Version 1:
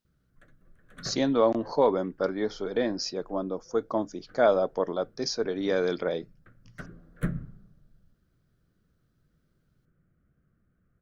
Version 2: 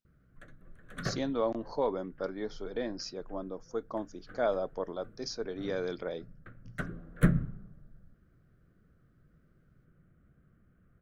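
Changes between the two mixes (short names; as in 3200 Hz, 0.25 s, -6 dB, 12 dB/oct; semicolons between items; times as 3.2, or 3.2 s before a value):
speech -8.0 dB; background +5.5 dB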